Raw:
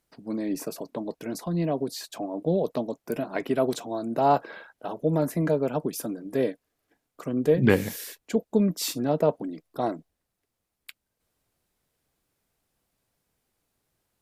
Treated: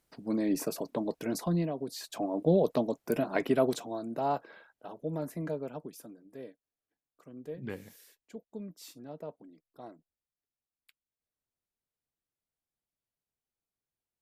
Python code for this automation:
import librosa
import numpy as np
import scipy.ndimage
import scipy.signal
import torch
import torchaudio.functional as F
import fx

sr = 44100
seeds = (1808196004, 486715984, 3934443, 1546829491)

y = fx.gain(x, sr, db=fx.line((1.52, 0.0), (1.74, -9.5), (2.25, 0.0), (3.43, 0.0), (4.42, -11.0), (5.53, -11.0), (6.36, -20.0)))